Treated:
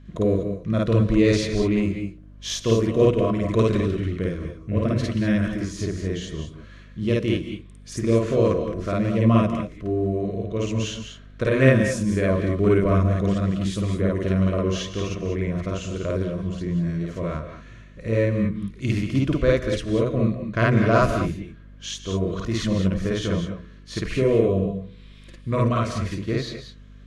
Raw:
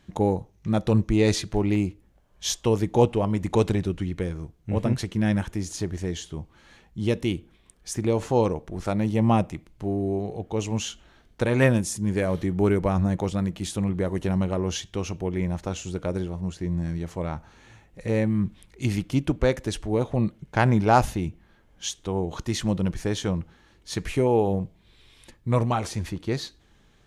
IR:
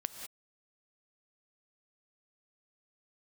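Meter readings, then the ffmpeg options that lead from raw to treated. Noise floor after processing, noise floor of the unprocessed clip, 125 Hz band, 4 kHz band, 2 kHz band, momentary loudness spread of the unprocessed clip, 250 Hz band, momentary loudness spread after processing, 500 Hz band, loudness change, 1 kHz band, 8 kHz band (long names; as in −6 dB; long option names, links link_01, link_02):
−45 dBFS, −59 dBFS, +3.0 dB, +1.5 dB, +4.0 dB, 11 LU, +3.0 dB, 14 LU, +3.5 dB, +3.0 dB, −2.0 dB, −2.5 dB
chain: -filter_complex "[0:a]asuperstop=centerf=830:order=8:qfactor=3.1,aemphasis=mode=reproduction:type=50fm,bandreject=frequency=61.57:width_type=h:width=4,bandreject=frequency=123.14:width_type=h:width=4,bandreject=frequency=184.71:width_type=h:width=4,bandreject=frequency=246.28:width_type=h:width=4,bandreject=frequency=307.85:width_type=h:width=4,bandreject=frequency=369.42:width_type=h:width=4,bandreject=frequency=430.99:width_type=h:width=4,bandreject=frequency=492.56:width_type=h:width=4,asplit=2[link_01][link_02];[1:a]atrim=start_sample=2205,lowshelf=frequency=450:gain=-4,adelay=53[link_03];[link_02][link_03]afir=irnorm=-1:irlink=0,volume=3.5dB[link_04];[link_01][link_04]amix=inputs=2:normalize=0,aeval=exprs='val(0)+0.00631*(sin(2*PI*50*n/s)+sin(2*PI*2*50*n/s)/2+sin(2*PI*3*50*n/s)/3+sin(2*PI*4*50*n/s)/4+sin(2*PI*5*50*n/s)/5)':channel_layout=same"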